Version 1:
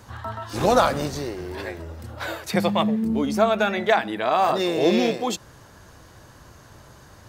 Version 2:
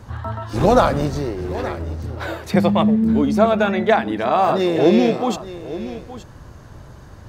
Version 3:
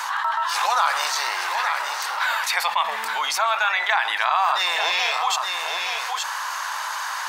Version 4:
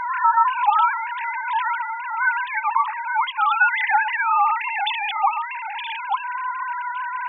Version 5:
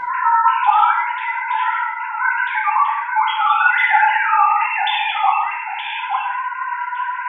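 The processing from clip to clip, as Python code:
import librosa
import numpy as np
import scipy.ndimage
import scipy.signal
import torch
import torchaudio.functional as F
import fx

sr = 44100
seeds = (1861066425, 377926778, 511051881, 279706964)

y1 = fx.tilt_eq(x, sr, slope=-2.0)
y1 = y1 + 10.0 ** (-14.5 / 20.0) * np.pad(y1, (int(872 * sr / 1000.0), 0))[:len(y1)]
y1 = y1 * librosa.db_to_amplitude(2.5)
y2 = scipy.signal.sosfilt(scipy.signal.cheby1(4, 1.0, 920.0, 'highpass', fs=sr, output='sos'), y1)
y2 = fx.env_flatten(y2, sr, amount_pct=70)
y3 = fx.sine_speech(y2, sr)
y3 = y3 * librosa.db_to_amplitude(1.5)
y4 = y3 + 10.0 ** (-13.0 / 20.0) * np.pad(y3, (int(100 * sr / 1000.0), 0))[:len(y3)]
y4 = fx.rev_gated(y4, sr, seeds[0], gate_ms=240, shape='falling', drr_db=-4.0)
y4 = y4 * librosa.db_to_amplitude(-1.0)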